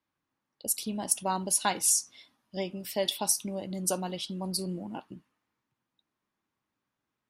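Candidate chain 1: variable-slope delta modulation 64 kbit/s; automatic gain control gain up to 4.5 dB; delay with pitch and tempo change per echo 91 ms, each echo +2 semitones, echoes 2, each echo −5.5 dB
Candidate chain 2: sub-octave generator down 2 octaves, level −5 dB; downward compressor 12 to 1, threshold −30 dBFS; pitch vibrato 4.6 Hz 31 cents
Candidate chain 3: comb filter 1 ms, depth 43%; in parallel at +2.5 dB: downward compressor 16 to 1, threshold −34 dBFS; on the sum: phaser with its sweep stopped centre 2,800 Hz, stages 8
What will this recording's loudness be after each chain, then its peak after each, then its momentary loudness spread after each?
−26.5, −35.5, −30.0 LKFS; −9.0, −16.5, −12.5 dBFS; 12, 10, 13 LU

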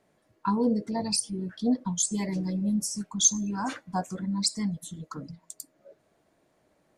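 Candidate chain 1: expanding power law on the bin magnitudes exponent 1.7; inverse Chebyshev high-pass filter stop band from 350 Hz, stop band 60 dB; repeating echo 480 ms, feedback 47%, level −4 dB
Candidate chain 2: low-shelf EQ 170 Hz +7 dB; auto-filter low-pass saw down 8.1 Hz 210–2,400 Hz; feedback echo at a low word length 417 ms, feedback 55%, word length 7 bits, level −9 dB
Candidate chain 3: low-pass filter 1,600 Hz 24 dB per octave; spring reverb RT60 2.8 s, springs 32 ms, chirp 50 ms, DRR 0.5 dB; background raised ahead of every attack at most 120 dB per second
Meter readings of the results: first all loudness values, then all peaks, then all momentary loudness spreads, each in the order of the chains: −29.5, −26.0, −27.5 LKFS; −11.5, −8.0, −12.0 dBFS; 21, 12, 14 LU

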